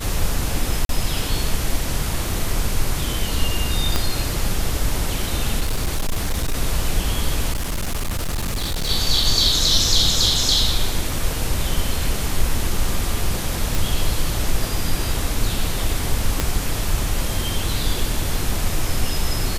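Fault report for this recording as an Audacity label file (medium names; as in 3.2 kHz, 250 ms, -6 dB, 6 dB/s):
0.850000	0.890000	dropout 42 ms
3.960000	3.960000	pop -4 dBFS
5.600000	6.550000	clipped -16.5 dBFS
7.520000	8.900000	clipped -19.5 dBFS
13.750000	13.750000	pop
16.400000	16.400000	pop -4 dBFS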